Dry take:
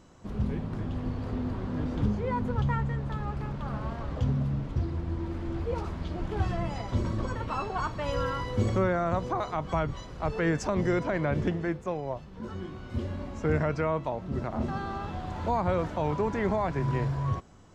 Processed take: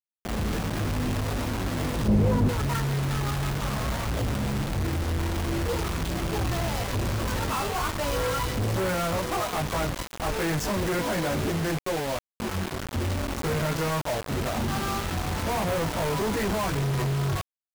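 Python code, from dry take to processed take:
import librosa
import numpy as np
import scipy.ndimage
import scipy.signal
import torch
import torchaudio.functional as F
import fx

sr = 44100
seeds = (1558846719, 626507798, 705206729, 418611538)

y = fx.chorus_voices(x, sr, voices=2, hz=0.47, base_ms=20, depth_ms=2.1, mix_pct=50)
y = fx.quant_companded(y, sr, bits=2)
y = fx.tilt_shelf(y, sr, db=8.0, hz=810.0, at=(2.08, 2.49))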